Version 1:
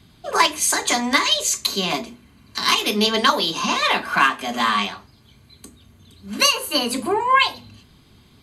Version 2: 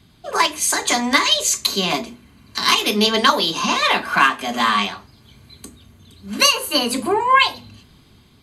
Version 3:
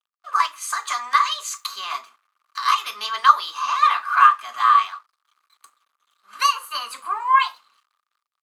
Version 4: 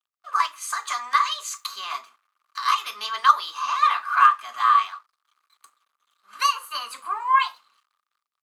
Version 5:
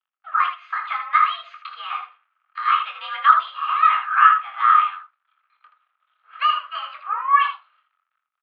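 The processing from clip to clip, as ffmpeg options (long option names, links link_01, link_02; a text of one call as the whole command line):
ffmpeg -i in.wav -af "dynaudnorm=framelen=500:gausssize=3:maxgain=11.5dB,volume=-1dB" out.wav
ffmpeg -i in.wav -af "aeval=exprs='sgn(val(0))*max(abs(val(0))-0.00562,0)':channel_layout=same,highpass=frequency=1200:width_type=q:width=11,volume=-11.5dB" out.wav
ffmpeg -i in.wav -af "asoftclip=type=hard:threshold=-3dB,volume=-2.5dB" out.wav
ffmpeg -i in.wav -af "highpass=frequency=480:width_type=q:width=0.5412,highpass=frequency=480:width_type=q:width=1.307,lowpass=frequency=2900:width_type=q:width=0.5176,lowpass=frequency=2900:width_type=q:width=0.7071,lowpass=frequency=2900:width_type=q:width=1.932,afreqshift=81,aecho=1:1:23|79:0.473|0.422,volume=1.5dB" out.wav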